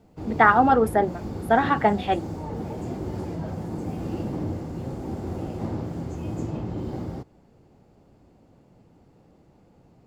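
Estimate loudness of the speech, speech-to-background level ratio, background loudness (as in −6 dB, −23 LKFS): −21.0 LKFS, 11.5 dB, −32.5 LKFS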